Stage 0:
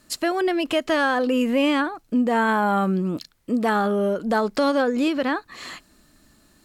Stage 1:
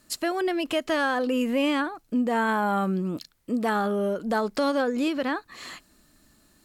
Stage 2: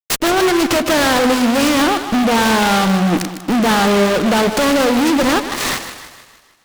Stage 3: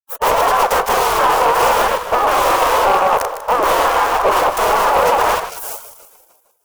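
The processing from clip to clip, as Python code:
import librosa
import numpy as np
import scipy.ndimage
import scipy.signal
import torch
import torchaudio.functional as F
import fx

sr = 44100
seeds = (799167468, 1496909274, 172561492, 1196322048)

y1 = fx.high_shelf(x, sr, hz=8400.0, db=4.5)
y1 = y1 * 10.0 ** (-4.0 / 20.0)
y2 = fx.fuzz(y1, sr, gain_db=39.0, gate_db=-47.0)
y2 = fx.echo_split(y2, sr, split_hz=670.0, low_ms=103, high_ms=154, feedback_pct=52, wet_db=-10)
y2 = fx.noise_mod_delay(y2, sr, seeds[0], noise_hz=1900.0, depth_ms=0.066)
y3 = fx.spec_gate(y2, sr, threshold_db=-15, keep='weak')
y3 = fx.graphic_eq_10(y3, sr, hz=(125, 250, 500, 1000, 2000, 4000, 8000), db=(-11, -7, 11, 11, -6, -10, -5))
y3 = np.clip(10.0 ** (12.5 / 20.0) * y3, -1.0, 1.0) / 10.0 ** (12.5 / 20.0)
y3 = y3 * 10.0 ** (4.5 / 20.0)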